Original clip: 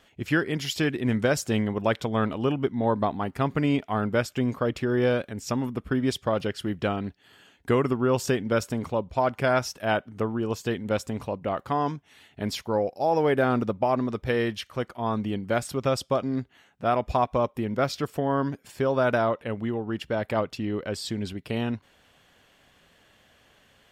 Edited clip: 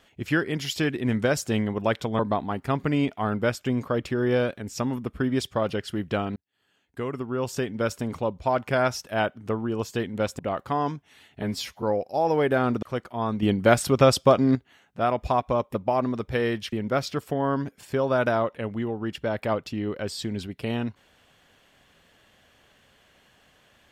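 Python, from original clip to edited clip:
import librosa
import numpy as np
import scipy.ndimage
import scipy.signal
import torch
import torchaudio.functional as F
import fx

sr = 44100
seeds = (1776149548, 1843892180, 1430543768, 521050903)

y = fx.edit(x, sr, fx.cut(start_s=2.19, length_s=0.71),
    fx.fade_in_span(start_s=7.07, length_s=1.82),
    fx.cut(start_s=11.1, length_s=0.29),
    fx.stretch_span(start_s=12.42, length_s=0.27, factor=1.5),
    fx.move(start_s=13.69, length_s=0.98, to_s=17.59),
    fx.clip_gain(start_s=15.27, length_s=1.13, db=7.5), tone=tone)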